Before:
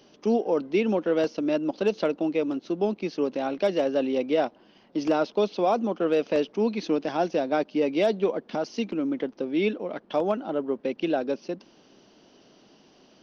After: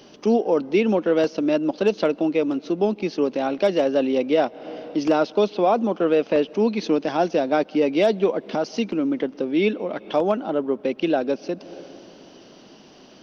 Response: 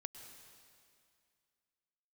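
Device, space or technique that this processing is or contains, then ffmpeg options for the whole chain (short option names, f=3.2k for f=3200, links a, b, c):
ducked reverb: -filter_complex "[0:a]asplit=3[a][b][c];[1:a]atrim=start_sample=2205[d];[b][d]afir=irnorm=-1:irlink=0[e];[c]apad=whole_len=583025[f];[e][f]sidechaincompress=threshold=-43dB:ratio=8:attack=6.9:release=161,volume=1dB[g];[a][g]amix=inputs=2:normalize=0,asettb=1/sr,asplit=3[h][i][j];[h]atrim=end=5.504[k];[i]atrim=start=5.5:end=6.47,asetpts=PTS-STARTPTS,afade=t=in:d=0.004:c=qsin,afade=t=out:st=0.966:d=0.004:c=qsin,acrossover=split=4100[l][m];[m]acompressor=threshold=-58dB:ratio=4:attack=1:release=60[n];[l][n]amix=inputs=2:normalize=0[o];[j]atrim=start=6.466[p];[k][o]acrossfade=d=0.004:c1=hsin:c2=qsin[q];[q][p]acrossfade=d=0.004:c1=qsin:c2=hsin,volume=4dB"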